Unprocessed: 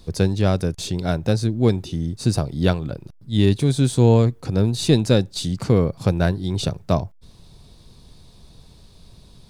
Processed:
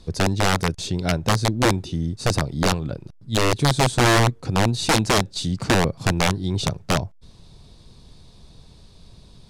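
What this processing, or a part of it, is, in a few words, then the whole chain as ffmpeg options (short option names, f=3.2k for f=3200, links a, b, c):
overflowing digital effects unit: -af "aeval=exprs='(mod(3.55*val(0)+1,2)-1)/3.55':c=same,lowpass=9.2k"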